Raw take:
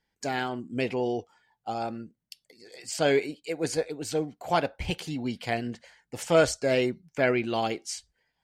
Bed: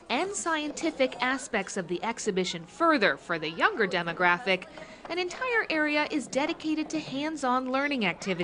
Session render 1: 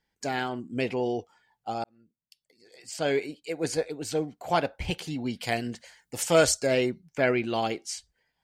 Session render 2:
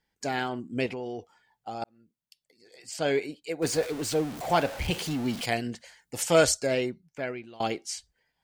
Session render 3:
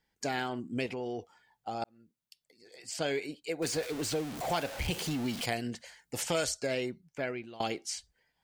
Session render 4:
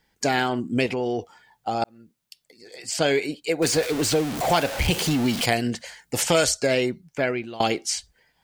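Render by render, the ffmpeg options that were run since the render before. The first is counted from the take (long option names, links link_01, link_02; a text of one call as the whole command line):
ffmpeg -i in.wav -filter_complex "[0:a]asettb=1/sr,asplit=3[link_01][link_02][link_03];[link_01]atrim=end=5.414[link_04];[link_02]atrim=start=5.41:end=6.67,asetpts=PTS-STARTPTS,afade=type=in:duration=0.004:curve=qsin,afade=type=out:start_time=1.256:duration=0.004:curve=qsin,highshelf=frequency=4800:gain=11[link_05];[link_03]atrim=start=6.666[link_06];[link_04][link_05]acrossfade=duration=0.004:curve1=hsin:curve2=qsin[link_07];[link_07][link_06]acrossfade=duration=0.004:curve1=qsin:curve2=hsin,asplit=2[link_08][link_09];[link_08]atrim=end=1.84,asetpts=PTS-STARTPTS,afade=type=out:start_time=1.836:duration=0.004:curve=hsin[link_10];[link_09]atrim=start=1.84,asetpts=PTS-STARTPTS,afade=type=in:duration=1.83[link_11];[link_10][link_11]concat=n=2:v=0:a=1" out.wav
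ffmpeg -i in.wav -filter_complex "[0:a]asettb=1/sr,asplit=3[link_01][link_02][link_03];[link_01]atrim=end=0.864[link_04];[link_02]atrim=start=0.86:end=1.82,asetpts=PTS-STARTPTS,afade=type=in:duration=0.004:curve=qsin,afade=type=out:start_time=0.956:duration=0.004:curve=qsin,acompressor=threshold=-33dB:ratio=3:attack=3.2:release=140:knee=1:detection=peak[link_05];[link_03]atrim=start=1.816[link_06];[link_04][link_05]acrossfade=duration=0.004:curve1=hsin:curve2=qsin[link_07];[link_07][link_06]acrossfade=duration=0.004:curve1=qsin:curve2=hsin,asettb=1/sr,asplit=3[link_08][link_09][link_10];[link_08]atrim=end=3.624[link_11];[link_09]atrim=start=3.62:end=5.46,asetpts=PTS-STARTPTS,afade=type=in:duration=0.004:curve=qsin,afade=type=out:start_time=1.836:duration=0.004:curve=qsin,aeval=exprs='val(0)+0.5*0.0211*sgn(val(0))':channel_layout=same[link_12];[link_10]atrim=start=5.456[link_13];[link_11][link_12]acrossfade=duration=0.004:curve1=hsin:curve2=qsin[link_14];[link_14][link_13]acrossfade=duration=0.004:curve1=qsin:curve2=hsin,asplit=2[link_15][link_16];[link_15]atrim=end=7.6,asetpts=PTS-STARTPTS,afade=type=out:start_time=6.44:duration=1.16:silence=0.0630957[link_17];[link_16]atrim=start=7.6,asetpts=PTS-STARTPTS,afade=type=in:duration=0.004:curve=hsin:silence=0.0630957[link_18];[link_17][link_18]concat=n=2:v=0:a=1" out.wav
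ffmpeg -i in.wav -filter_complex "[0:a]acrossover=split=1800|5200[link_01][link_02][link_03];[link_01]acompressor=threshold=-31dB:ratio=4[link_04];[link_02]acompressor=threshold=-38dB:ratio=4[link_05];[link_03]acompressor=threshold=-38dB:ratio=4[link_06];[link_04][link_05][link_06]amix=inputs=3:normalize=0" out.wav
ffmpeg -i in.wav -af "volume=11dB" out.wav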